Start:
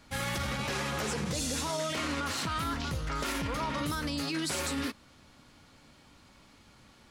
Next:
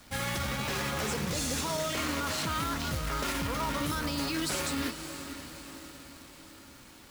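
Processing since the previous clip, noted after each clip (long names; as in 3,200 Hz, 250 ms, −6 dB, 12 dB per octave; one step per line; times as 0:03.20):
feedback delay with all-pass diffusion 521 ms, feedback 55%, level −10 dB
log-companded quantiser 4 bits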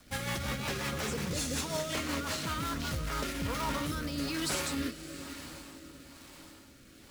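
rotating-speaker cabinet horn 5.5 Hz, later 1.1 Hz, at 0:02.63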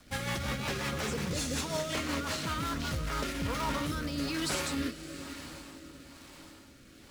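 high-shelf EQ 10,000 Hz −6 dB
level +1 dB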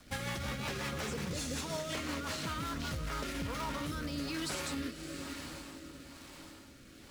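downward compressor, threshold −34 dBFS, peak gain reduction 6 dB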